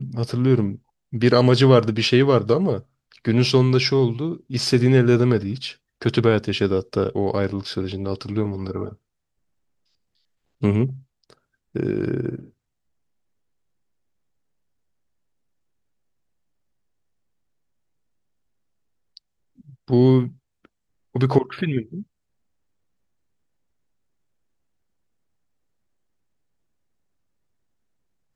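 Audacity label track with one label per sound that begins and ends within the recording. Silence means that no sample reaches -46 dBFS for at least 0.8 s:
10.610000	12.500000	sound
19.170000	22.030000	sound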